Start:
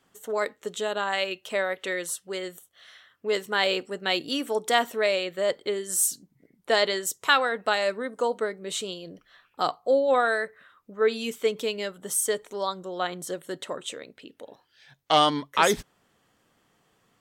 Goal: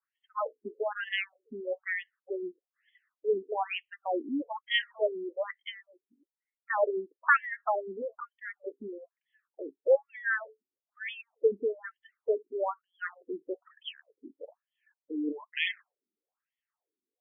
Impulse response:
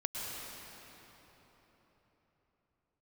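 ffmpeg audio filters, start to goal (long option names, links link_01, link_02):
-af "afftdn=noise_reduction=20:noise_floor=-39,afftfilt=real='re*between(b*sr/1024,290*pow(2500/290,0.5+0.5*sin(2*PI*1.1*pts/sr))/1.41,290*pow(2500/290,0.5+0.5*sin(2*PI*1.1*pts/sr))*1.41)':imag='im*between(b*sr/1024,290*pow(2500/290,0.5+0.5*sin(2*PI*1.1*pts/sr))/1.41,290*pow(2500/290,0.5+0.5*sin(2*PI*1.1*pts/sr))*1.41)':win_size=1024:overlap=0.75"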